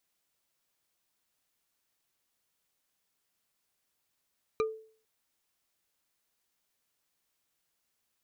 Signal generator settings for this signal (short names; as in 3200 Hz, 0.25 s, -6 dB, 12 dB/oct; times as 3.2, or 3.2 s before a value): wood hit bar, lowest mode 440 Hz, decay 0.47 s, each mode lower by 5 dB, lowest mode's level -23.5 dB